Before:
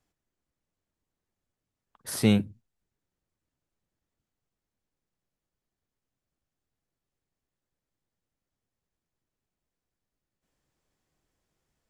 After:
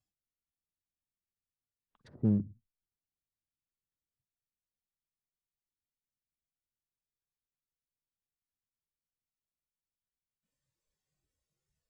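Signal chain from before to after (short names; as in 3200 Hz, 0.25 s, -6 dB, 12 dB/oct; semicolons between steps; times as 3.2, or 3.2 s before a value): treble ducked by the level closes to 540 Hz, closed at -39.5 dBFS; spectral noise reduction 12 dB; treble ducked by the level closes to 750 Hz, closed at -43.5 dBFS; bell 890 Hz -9 dB 3 oct; in parallel at -3.5 dB: one-sided clip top -25 dBFS, bottom -15.5 dBFS; on the sum: gain -7 dB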